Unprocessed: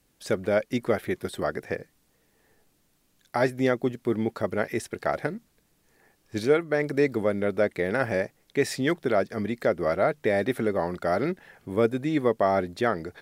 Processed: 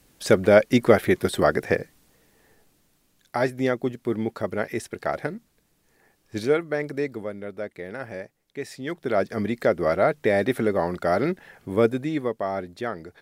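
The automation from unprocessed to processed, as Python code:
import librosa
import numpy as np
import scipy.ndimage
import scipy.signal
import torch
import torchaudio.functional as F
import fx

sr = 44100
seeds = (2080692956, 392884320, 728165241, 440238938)

y = fx.gain(x, sr, db=fx.line((1.73, 8.5), (3.46, 0.0), (6.63, 0.0), (7.4, -9.0), (8.78, -9.0), (9.25, 3.0), (11.88, 3.0), (12.36, -5.0)))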